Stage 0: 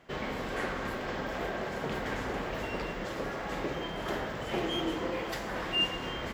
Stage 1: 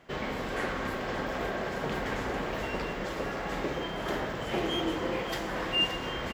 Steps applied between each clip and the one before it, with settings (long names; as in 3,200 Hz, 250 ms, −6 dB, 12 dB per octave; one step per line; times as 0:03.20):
single-tap delay 573 ms −10.5 dB
level +1.5 dB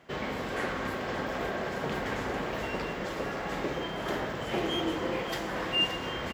high-pass filter 53 Hz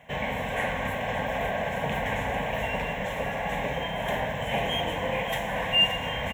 phaser with its sweep stopped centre 1,300 Hz, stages 6
level +7.5 dB